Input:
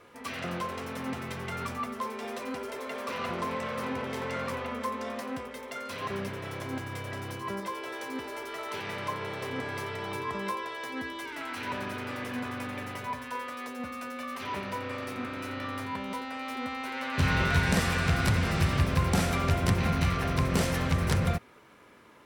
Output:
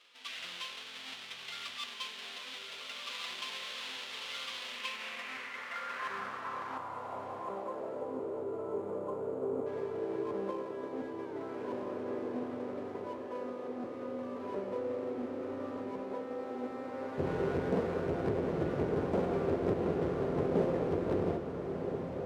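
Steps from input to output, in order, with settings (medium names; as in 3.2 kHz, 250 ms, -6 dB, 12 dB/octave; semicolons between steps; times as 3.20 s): square wave that keeps the level; time-frequency box 6.77–9.67 s, 1.5–6.5 kHz -15 dB; echo that smears into a reverb 1360 ms, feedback 49%, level -6 dB; band-pass sweep 3.3 kHz -> 430 Hz, 4.61–8.38 s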